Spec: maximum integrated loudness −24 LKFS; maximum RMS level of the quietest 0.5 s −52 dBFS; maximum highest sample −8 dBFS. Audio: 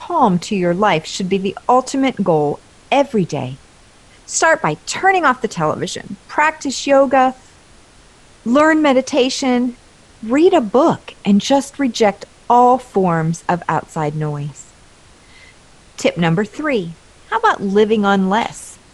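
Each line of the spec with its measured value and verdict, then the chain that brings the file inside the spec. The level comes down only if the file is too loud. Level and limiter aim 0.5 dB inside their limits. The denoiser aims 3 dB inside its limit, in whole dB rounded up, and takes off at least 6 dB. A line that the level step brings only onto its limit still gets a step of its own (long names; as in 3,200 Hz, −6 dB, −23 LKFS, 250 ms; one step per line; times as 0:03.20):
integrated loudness −16.0 LKFS: out of spec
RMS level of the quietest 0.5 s −46 dBFS: out of spec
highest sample −2.5 dBFS: out of spec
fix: level −8.5 dB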